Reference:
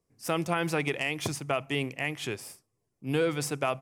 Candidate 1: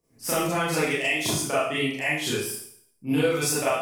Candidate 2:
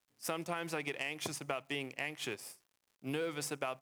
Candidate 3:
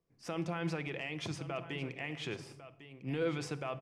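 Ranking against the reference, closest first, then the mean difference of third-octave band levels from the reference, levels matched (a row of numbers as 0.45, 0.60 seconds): 2, 3, 1; 3.5, 5.5, 7.5 decibels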